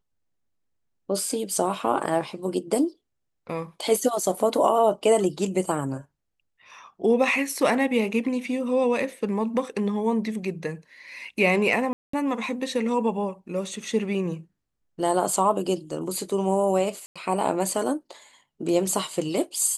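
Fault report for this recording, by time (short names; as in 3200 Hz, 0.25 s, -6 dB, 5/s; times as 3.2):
11.93–12.13 gap 0.204 s
17.06–17.16 gap 96 ms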